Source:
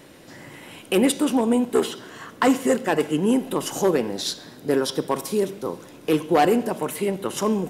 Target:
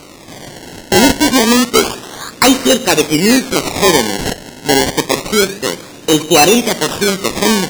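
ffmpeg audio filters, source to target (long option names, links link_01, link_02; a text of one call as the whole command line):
ffmpeg -i in.wav -af "acrusher=samples=25:mix=1:aa=0.000001:lfo=1:lforange=25:lforate=0.28,equalizer=frequency=6100:width_type=o:width=2.5:gain=10,apsyclip=10.5dB,volume=-1.5dB" out.wav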